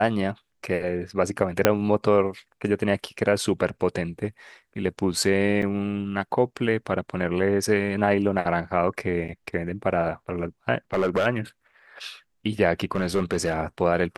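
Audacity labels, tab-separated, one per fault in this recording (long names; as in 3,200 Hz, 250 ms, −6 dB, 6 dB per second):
1.650000	1.650000	click −1 dBFS
5.620000	5.620000	drop-out 4.4 ms
9.280000	9.290000	drop-out 7.5 ms
10.930000	11.270000	clipping −17 dBFS
12.950000	13.570000	clipping −17 dBFS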